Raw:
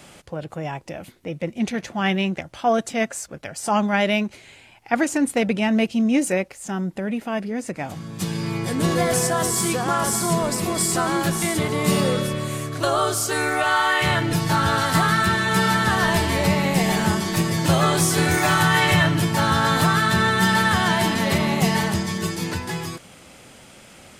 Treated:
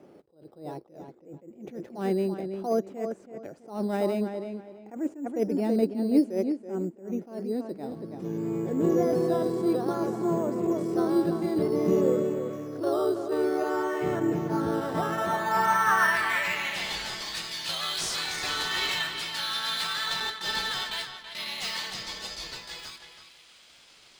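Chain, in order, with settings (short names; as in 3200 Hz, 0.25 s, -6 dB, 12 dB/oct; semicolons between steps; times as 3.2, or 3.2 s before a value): 20.2–21.46 gate with hold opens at -9 dBFS; band-pass sweep 370 Hz -> 4100 Hz, 14.75–16.98; in parallel at -8 dB: decimation with a swept rate 8×, swing 60% 0.55 Hz; on the sum: darkening echo 0.328 s, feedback 26%, low-pass 4200 Hz, level -8 dB; attack slew limiter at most 140 dB/s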